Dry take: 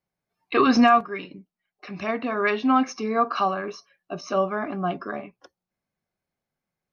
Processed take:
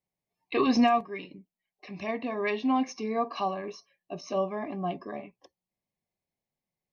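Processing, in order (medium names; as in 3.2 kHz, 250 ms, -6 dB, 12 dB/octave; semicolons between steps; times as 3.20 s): Butterworth band-stop 1.4 kHz, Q 2.2; trim -5 dB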